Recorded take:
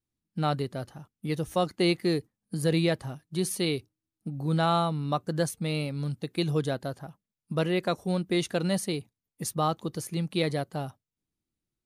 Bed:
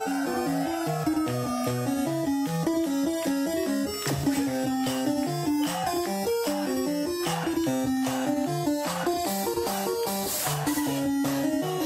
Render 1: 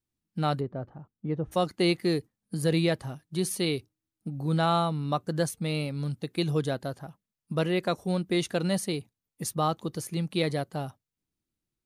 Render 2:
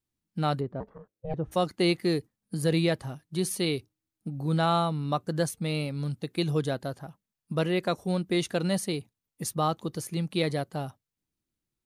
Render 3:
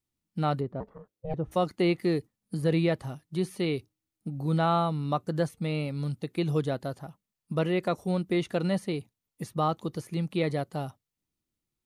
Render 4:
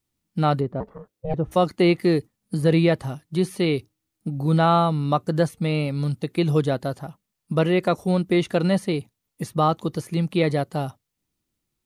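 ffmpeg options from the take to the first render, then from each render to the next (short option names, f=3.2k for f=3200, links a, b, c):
-filter_complex "[0:a]asplit=3[a][b][c];[a]afade=t=out:st=0.59:d=0.02[d];[b]lowpass=1.1k,afade=t=in:st=0.59:d=0.02,afade=t=out:st=1.51:d=0.02[e];[c]afade=t=in:st=1.51:d=0.02[f];[d][e][f]amix=inputs=3:normalize=0"
-filter_complex "[0:a]asettb=1/sr,asplit=3[a][b][c];[a]atrim=end=0.804[d];[b]atrim=start=0.8:end=1.34,asetpts=PTS-STARTPTS,afade=t=in:d=0.004:c=qsin,afade=t=out:st=0.536:d=0.004:c=qsin,aeval=exprs='val(0)*sin(2*PI*320*n/s)':c=same[e];[c]atrim=start=1.336[f];[d][e]acrossfade=d=0.004:c1=hsin:c2=qsin[g];[g][f]acrossfade=d=0.004:c1=qsin:c2=hsin"
-filter_complex "[0:a]acrossover=split=3000[a][b];[b]acompressor=threshold=-48dB:ratio=4:attack=1:release=60[c];[a][c]amix=inputs=2:normalize=0,bandreject=f=1.6k:w=14"
-af "volume=7dB"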